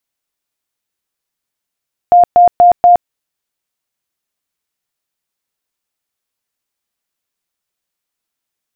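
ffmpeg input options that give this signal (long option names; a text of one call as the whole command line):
ffmpeg -f lavfi -i "aevalsrc='0.75*sin(2*PI*705*mod(t,0.24))*lt(mod(t,0.24),83/705)':duration=0.96:sample_rate=44100" out.wav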